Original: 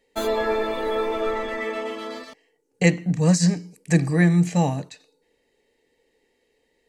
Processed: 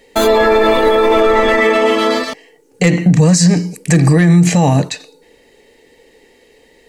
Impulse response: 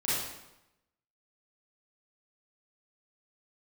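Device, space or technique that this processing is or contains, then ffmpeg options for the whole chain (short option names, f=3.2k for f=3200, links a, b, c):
loud club master: -af "acompressor=threshold=-19dB:ratio=2,asoftclip=type=hard:threshold=-12.5dB,alimiter=level_in=21.5dB:limit=-1dB:release=50:level=0:latency=1,volume=-2dB"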